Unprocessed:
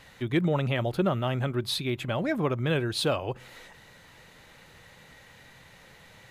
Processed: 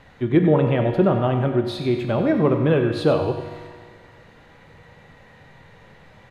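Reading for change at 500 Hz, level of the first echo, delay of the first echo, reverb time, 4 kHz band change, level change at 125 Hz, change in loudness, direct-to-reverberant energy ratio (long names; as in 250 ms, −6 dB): +10.0 dB, −10.5 dB, 94 ms, 1.8 s, −3.5 dB, +7.0 dB, +8.0 dB, 3.5 dB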